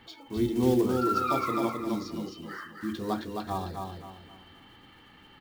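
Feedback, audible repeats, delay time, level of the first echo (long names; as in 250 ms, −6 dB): 34%, 4, 263 ms, −4.5 dB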